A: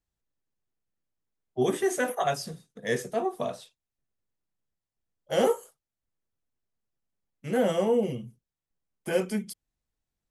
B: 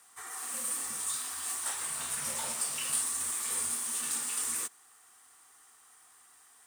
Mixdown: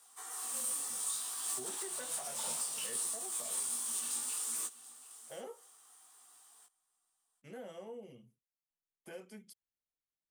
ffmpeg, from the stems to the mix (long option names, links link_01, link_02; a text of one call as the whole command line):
ffmpeg -i stem1.wav -i stem2.wav -filter_complex "[0:a]lowshelf=frequency=160:gain=-12,acompressor=threshold=-37dB:ratio=2,volume=-13.5dB,asplit=2[link_01][link_02];[1:a]firequalizer=gain_entry='entry(740,0);entry(1900,-9);entry(3200,0)':delay=0.05:min_phase=1,flanger=delay=16.5:depth=5:speed=0.63,highpass=frequency=370:poles=1,volume=2dB,asplit=2[link_03][link_04];[link_04]volume=-20dB[link_05];[link_02]apad=whole_len=298269[link_06];[link_03][link_06]sidechaincompress=threshold=-51dB:ratio=8:attack=32:release=168[link_07];[link_05]aecho=0:1:733:1[link_08];[link_01][link_07][link_08]amix=inputs=3:normalize=0,alimiter=level_in=1.5dB:limit=-24dB:level=0:latency=1:release=430,volume=-1.5dB" out.wav